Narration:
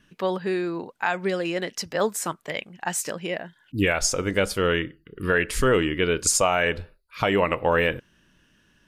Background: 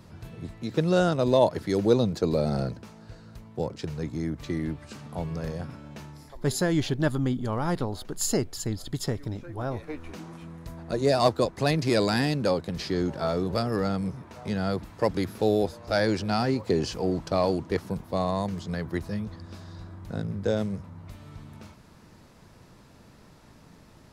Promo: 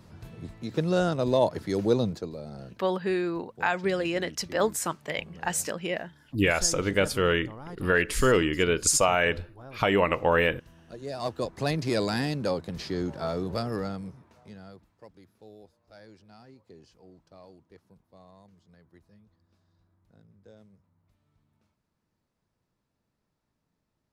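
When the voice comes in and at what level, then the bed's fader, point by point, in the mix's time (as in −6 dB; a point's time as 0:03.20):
2.60 s, −1.5 dB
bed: 0:02.10 −2.5 dB
0:02.33 −14.5 dB
0:11.07 −14.5 dB
0:11.55 −3.5 dB
0:13.72 −3.5 dB
0:15.12 −27 dB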